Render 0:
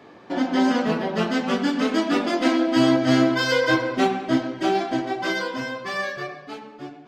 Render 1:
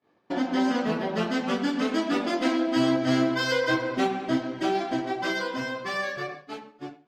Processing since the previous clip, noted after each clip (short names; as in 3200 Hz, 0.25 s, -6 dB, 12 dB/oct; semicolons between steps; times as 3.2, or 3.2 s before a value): expander -34 dBFS; in parallel at +1 dB: compressor, threshold -26 dBFS, peak gain reduction 12 dB; on the sum: gain -7.5 dB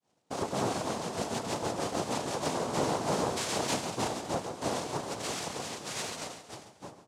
noise vocoder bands 2; feedback echo 0.138 s, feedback 44%, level -12 dB; gain -7.5 dB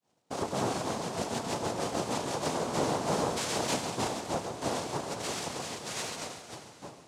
plate-style reverb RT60 3.9 s, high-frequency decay 0.95×, DRR 11 dB